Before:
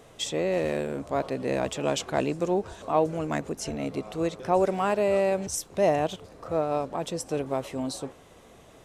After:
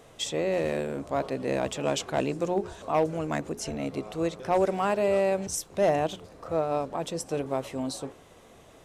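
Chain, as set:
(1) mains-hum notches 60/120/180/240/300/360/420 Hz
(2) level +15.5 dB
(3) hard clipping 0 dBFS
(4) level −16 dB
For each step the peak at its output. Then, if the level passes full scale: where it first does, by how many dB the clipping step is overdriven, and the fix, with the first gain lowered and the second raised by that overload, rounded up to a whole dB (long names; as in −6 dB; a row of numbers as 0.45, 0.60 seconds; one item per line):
−11.0, +4.5, 0.0, −16.0 dBFS
step 2, 4.5 dB
step 2 +10.5 dB, step 4 −11 dB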